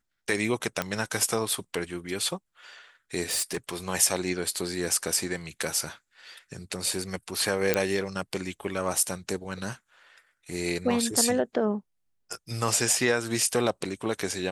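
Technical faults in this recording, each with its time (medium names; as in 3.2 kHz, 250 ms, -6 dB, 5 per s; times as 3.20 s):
0.82 s: pop -12 dBFS
3.30–3.75 s: clipped -24.5 dBFS
7.74 s: pop -6 dBFS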